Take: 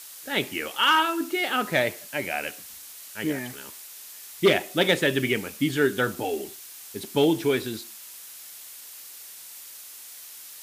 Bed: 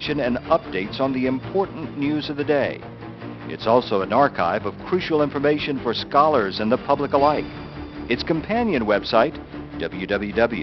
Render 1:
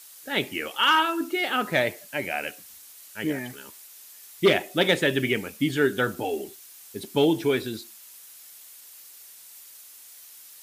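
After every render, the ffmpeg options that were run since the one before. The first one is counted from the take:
-af "afftdn=nr=6:nf=-44"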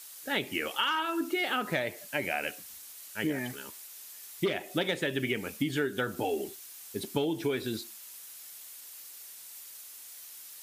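-af "acompressor=threshold=0.0501:ratio=10"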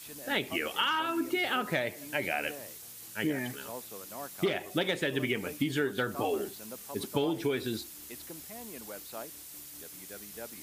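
-filter_complex "[1:a]volume=0.0501[s0];[0:a][s0]amix=inputs=2:normalize=0"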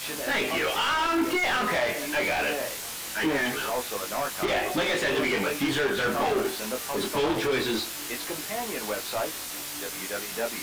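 -filter_complex "[0:a]asplit=2[s0][s1];[s1]highpass=f=720:p=1,volume=56.2,asoftclip=type=tanh:threshold=0.178[s2];[s0][s2]amix=inputs=2:normalize=0,lowpass=f=2800:p=1,volume=0.501,flanger=delay=19:depth=4.7:speed=0.22"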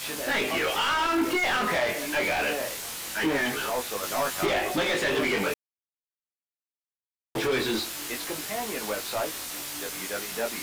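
-filter_complex "[0:a]asettb=1/sr,asplit=3[s0][s1][s2];[s0]atrim=end=4.024[s3];[s1]atrim=start=4.02:end=4.49,asetpts=PTS-STARTPTS,afade=t=in:d=0.004:c=qsin,afade=t=out:st=0.466:d=0.004:c=qsin,asplit=2[s4][s5];[s5]adelay=12,volume=0.794[s6];[s4][s6]amix=inputs=2:normalize=0,atrim=end_sample=20727[s7];[s2]atrim=start=4.486[s8];[s3][s7]acrossfade=d=0.004:c1=hsin:c2=qsin[s9];[s9][s8]acrossfade=d=0.004:c1=qsin:c2=hsin,asplit=3[s10][s11][s12];[s10]atrim=end=5.54,asetpts=PTS-STARTPTS,afade=t=out:st=5.536:d=0.004:c=hsin[s13];[s11]atrim=start=5.54:end=7.35,asetpts=PTS-STARTPTS,volume=0[s14];[s12]atrim=start=7.35,asetpts=PTS-STARTPTS,afade=t=in:d=0.004:c=hsin[s15];[s13][s14][s15]concat=n=3:v=0:a=1"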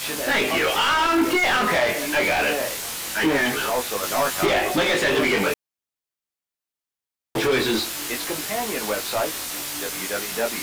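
-af "volume=1.88"

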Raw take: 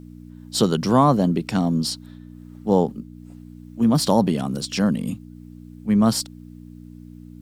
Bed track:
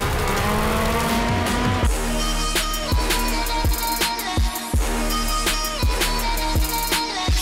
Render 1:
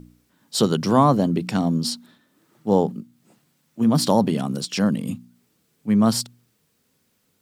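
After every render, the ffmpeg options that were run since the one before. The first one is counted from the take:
-af "bandreject=f=60:t=h:w=4,bandreject=f=120:t=h:w=4,bandreject=f=180:t=h:w=4,bandreject=f=240:t=h:w=4,bandreject=f=300:t=h:w=4"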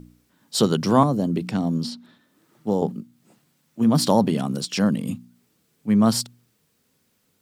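-filter_complex "[0:a]asettb=1/sr,asplit=3[s0][s1][s2];[s0]atrim=end=1.034[s3];[s1]atrim=start=1.03:end=2.82,asetpts=PTS-STARTPTS,afade=t=in:d=0.004:c=qsin,afade=t=out:st=1.786:d=0.004:c=qsin,acrossover=split=620|5000[s4][s5][s6];[s4]acompressor=threshold=0.112:ratio=4[s7];[s5]acompressor=threshold=0.02:ratio=4[s8];[s6]acompressor=threshold=0.00398:ratio=4[s9];[s7][s8][s9]amix=inputs=3:normalize=0[s10];[s2]atrim=start=2.816[s11];[s3][s10]acrossfade=d=0.004:c1=hsin:c2=qsin[s12];[s12][s11]acrossfade=d=0.004:c1=qsin:c2=hsin"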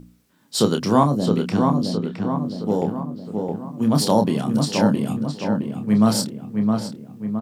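-filter_complex "[0:a]asplit=2[s0][s1];[s1]adelay=28,volume=0.447[s2];[s0][s2]amix=inputs=2:normalize=0,asplit=2[s3][s4];[s4]adelay=665,lowpass=f=2200:p=1,volume=0.631,asplit=2[s5][s6];[s6]adelay=665,lowpass=f=2200:p=1,volume=0.54,asplit=2[s7][s8];[s8]adelay=665,lowpass=f=2200:p=1,volume=0.54,asplit=2[s9][s10];[s10]adelay=665,lowpass=f=2200:p=1,volume=0.54,asplit=2[s11][s12];[s12]adelay=665,lowpass=f=2200:p=1,volume=0.54,asplit=2[s13][s14];[s14]adelay=665,lowpass=f=2200:p=1,volume=0.54,asplit=2[s15][s16];[s16]adelay=665,lowpass=f=2200:p=1,volume=0.54[s17];[s5][s7][s9][s11][s13][s15][s17]amix=inputs=7:normalize=0[s18];[s3][s18]amix=inputs=2:normalize=0"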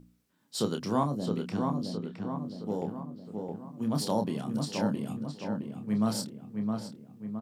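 -af "volume=0.266"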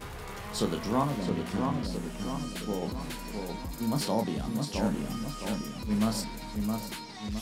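-filter_complex "[1:a]volume=0.106[s0];[0:a][s0]amix=inputs=2:normalize=0"

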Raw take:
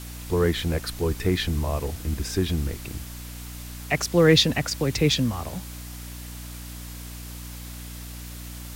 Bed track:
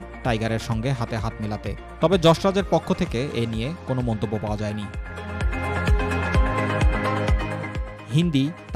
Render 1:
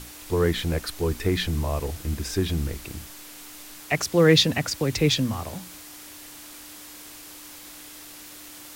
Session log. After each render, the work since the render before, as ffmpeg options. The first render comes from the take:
-af "bandreject=f=60:t=h:w=6,bandreject=f=120:t=h:w=6,bandreject=f=180:t=h:w=6,bandreject=f=240:t=h:w=6"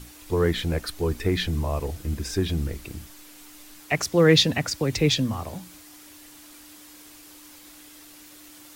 -af "afftdn=nr=6:nf=-44"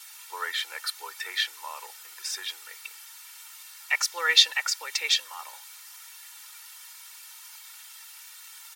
-af "highpass=f=1000:w=0.5412,highpass=f=1000:w=1.3066,aecho=1:1:2.2:0.82"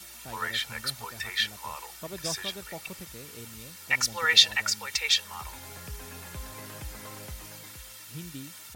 -filter_complex "[1:a]volume=0.0841[s0];[0:a][s0]amix=inputs=2:normalize=0"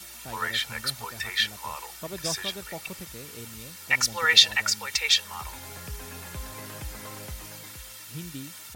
-af "volume=1.33,alimiter=limit=0.708:level=0:latency=1"

